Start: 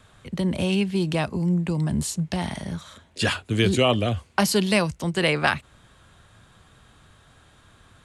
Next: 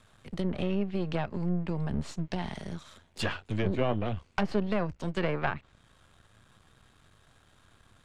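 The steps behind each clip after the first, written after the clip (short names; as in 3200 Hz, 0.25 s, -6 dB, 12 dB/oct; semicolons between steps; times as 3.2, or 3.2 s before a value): half-wave gain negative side -12 dB; treble ducked by the level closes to 1400 Hz, closed at -19 dBFS; gain -4 dB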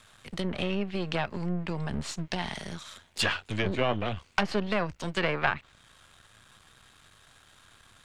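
tilt shelf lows -5.5 dB, about 910 Hz; gain +3.5 dB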